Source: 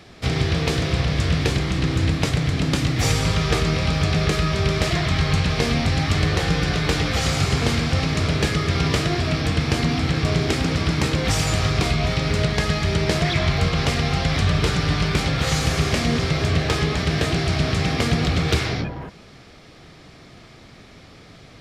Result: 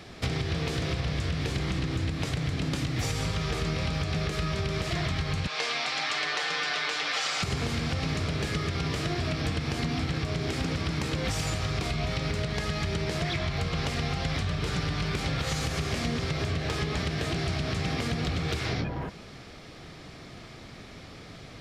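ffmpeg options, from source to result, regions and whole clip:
-filter_complex "[0:a]asettb=1/sr,asplit=3[s0][s1][s2];[s0]atrim=end=5.474[s3];[s1]atrim=start=5.47:end=7.43,asetpts=PTS-STARTPTS,afade=t=in:d=0.004:c=qsin,afade=t=out:st=1.956:d=0.004:c=qsin,highpass=800,lowpass=6800,aecho=1:1:6.7:0.42,atrim=end_sample=86436[s4];[s2]atrim=start=7.426[s5];[s3][s4]acrossfade=d=0.004:c1=hsin:c2=qsin[s6];[s6][s5]acrossfade=d=0.004:c1=qsin:c2=hsin,alimiter=limit=0.211:level=0:latency=1:release=258,acompressor=threshold=0.0501:ratio=6"

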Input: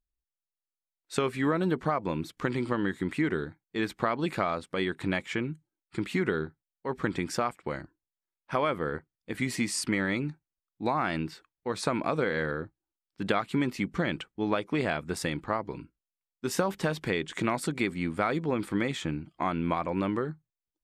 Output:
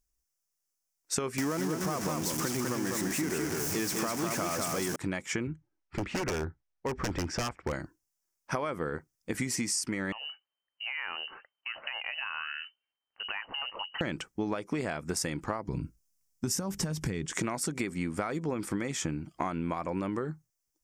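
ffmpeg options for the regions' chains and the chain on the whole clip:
-filter_complex "[0:a]asettb=1/sr,asplit=3[s0][s1][s2];[s0]atrim=end=1.384[s3];[s1]atrim=start=1.38:end=4.96,asetpts=PTS-STARTPTS,afade=t=in:d=0.004:c=qsin,afade=t=out:st=3.576:d=0.004:c=qsin,aeval=exprs='val(0)+0.5*0.0531*sgn(val(0))':c=same,highpass=100,aecho=1:1:202:0.668,atrim=end_sample=157878[s4];[s2]atrim=start=4.956[s5];[s3][s4]acrossfade=d=0.004:c1=hsin:c2=qsin[s6];[s6][s5]acrossfade=d=0.004:c1=qsin:c2=hsin,asettb=1/sr,asplit=3[s7][s8][s9];[s7]atrim=end=5.474[s10];[s8]atrim=start=5.47:end=7.73,asetpts=PTS-STARTPTS,afade=t=in:d=0.004:c=qsin,afade=t=out:st=2.256:d=0.004:c=qsin,lowpass=2600,lowshelf=f=110:t=q:w=1.5:g=8.5,aeval=exprs='0.0447*(abs(mod(val(0)/0.0447+3,4)-2)-1)':c=same[s11];[s9]atrim=start=7.726[s12];[s10][s11]acrossfade=d=0.004:c1=hsin:c2=qsin[s13];[s13][s12]acrossfade=d=0.004:c1=qsin:c2=hsin,asettb=1/sr,asplit=3[s14][s15][s16];[s14]atrim=end=10.124[s17];[s15]atrim=start=10.12:end=14.01,asetpts=PTS-STARTPTS,afade=t=in:d=0.004:c=qsin,afade=t=out:st=3.886:d=0.004:c=qsin,equalizer=f=2100:w=1.3:g=5,acompressor=threshold=0.01:ratio=3:attack=3.2:release=140:knee=1:detection=peak,lowpass=f=2600:t=q:w=0.5098,lowpass=f=2600:t=q:w=0.6013,lowpass=f=2600:t=q:w=0.9,lowpass=f=2600:t=q:w=2.563,afreqshift=-3100[s18];[s16]atrim=start=14.006[s19];[s17][s18]acrossfade=d=0.004:c1=hsin:c2=qsin[s20];[s20][s19]acrossfade=d=0.004:c1=qsin:c2=hsin,asettb=1/sr,asplit=3[s21][s22][s23];[s21]atrim=end=15.684[s24];[s22]atrim=start=15.68:end=17.26,asetpts=PTS-STARTPTS,afade=t=in:d=0.004:c=qsin,afade=t=out:st=1.576:d=0.004:c=qsin,bass=f=250:g=14,treble=f=4000:g=4,acompressor=threshold=0.0316:ratio=2:attack=3.2:release=140:knee=1:detection=peak[s25];[s23]atrim=start=17.256[s26];[s24][s25]acrossfade=d=0.004:c1=hsin:c2=qsin[s27];[s27][s26]acrossfade=d=0.004:c1=qsin:c2=hsin,highshelf=f=4700:t=q:w=3:g=6,acompressor=threshold=0.02:ratio=10,volume=1.88"

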